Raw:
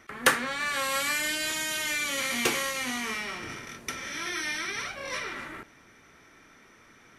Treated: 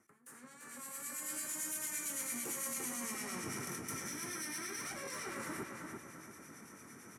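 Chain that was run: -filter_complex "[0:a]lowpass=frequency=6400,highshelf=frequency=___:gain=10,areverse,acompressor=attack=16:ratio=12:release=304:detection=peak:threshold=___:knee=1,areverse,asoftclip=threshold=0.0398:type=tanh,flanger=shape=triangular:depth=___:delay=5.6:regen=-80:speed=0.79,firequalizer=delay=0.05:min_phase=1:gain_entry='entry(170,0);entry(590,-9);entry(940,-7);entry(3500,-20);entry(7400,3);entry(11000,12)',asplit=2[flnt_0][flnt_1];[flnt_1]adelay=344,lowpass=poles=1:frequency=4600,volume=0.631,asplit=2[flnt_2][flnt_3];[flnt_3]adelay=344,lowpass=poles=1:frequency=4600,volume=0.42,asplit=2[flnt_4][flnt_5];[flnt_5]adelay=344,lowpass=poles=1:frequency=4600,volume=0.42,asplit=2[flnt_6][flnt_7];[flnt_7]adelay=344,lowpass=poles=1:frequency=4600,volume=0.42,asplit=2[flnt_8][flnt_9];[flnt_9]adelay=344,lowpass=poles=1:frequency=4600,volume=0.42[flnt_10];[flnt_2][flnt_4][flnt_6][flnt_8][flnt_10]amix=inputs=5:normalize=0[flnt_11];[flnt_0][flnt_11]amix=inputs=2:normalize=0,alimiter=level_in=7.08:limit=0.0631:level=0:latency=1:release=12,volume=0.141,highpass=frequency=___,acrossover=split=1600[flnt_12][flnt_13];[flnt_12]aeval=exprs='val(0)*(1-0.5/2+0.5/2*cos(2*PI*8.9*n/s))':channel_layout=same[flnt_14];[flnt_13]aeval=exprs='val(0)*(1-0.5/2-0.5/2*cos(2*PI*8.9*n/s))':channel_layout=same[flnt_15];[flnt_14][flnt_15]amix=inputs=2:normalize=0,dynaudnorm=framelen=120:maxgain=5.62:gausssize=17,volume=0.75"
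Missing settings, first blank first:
4300, 0.0141, 7.5, 140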